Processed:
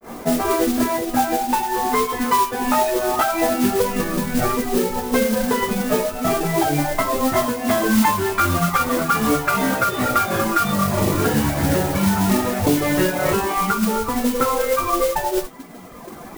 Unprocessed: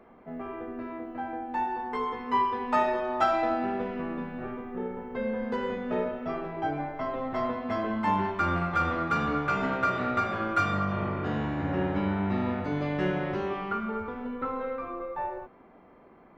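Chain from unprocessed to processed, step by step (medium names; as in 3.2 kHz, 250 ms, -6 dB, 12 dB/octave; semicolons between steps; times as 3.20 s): reverb removal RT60 1.5 s; compression 6:1, threshold -38 dBFS, peak gain reduction 17 dB; granulator 198 ms, spray 14 ms, pitch spread up and down by 0 st; modulation noise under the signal 11 dB; loudness maximiser +32 dB; trim -5.5 dB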